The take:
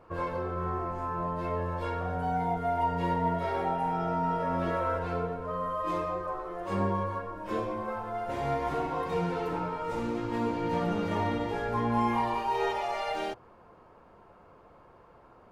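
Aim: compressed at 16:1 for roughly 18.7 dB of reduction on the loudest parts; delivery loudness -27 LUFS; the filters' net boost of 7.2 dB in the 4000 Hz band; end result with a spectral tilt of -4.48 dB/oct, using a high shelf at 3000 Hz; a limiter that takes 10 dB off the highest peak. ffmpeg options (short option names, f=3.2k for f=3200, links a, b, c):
-af "highshelf=f=3k:g=9,equalizer=f=4k:t=o:g=3,acompressor=threshold=-42dB:ratio=16,volume=24.5dB,alimiter=limit=-18.5dB:level=0:latency=1"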